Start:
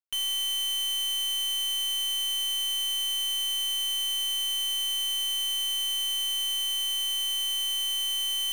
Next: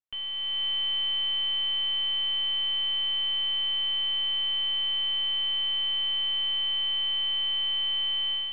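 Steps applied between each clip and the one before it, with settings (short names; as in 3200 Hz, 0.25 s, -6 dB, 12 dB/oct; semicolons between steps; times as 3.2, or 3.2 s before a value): low shelf 230 Hz +5 dB; AGC gain up to 6.5 dB; steep low-pass 3300 Hz 48 dB/oct; gain -3.5 dB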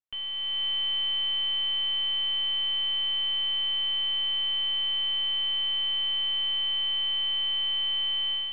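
nothing audible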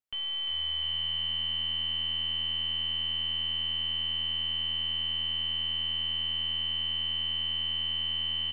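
limiter -28 dBFS, peak gain reduction 5.5 dB; on a send: frequency-shifting echo 0.35 s, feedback 51%, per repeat -80 Hz, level -5.5 dB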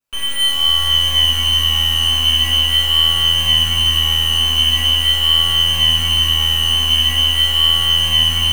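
in parallel at -7 dB: Schmitt trigger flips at -51.5 dBFS; on the sum: vibrato 0.43 Hz 9.5 cents; reverb RT60 3.0 s, pre-delay 4 ms, DRR -13 dB; gain +2 dB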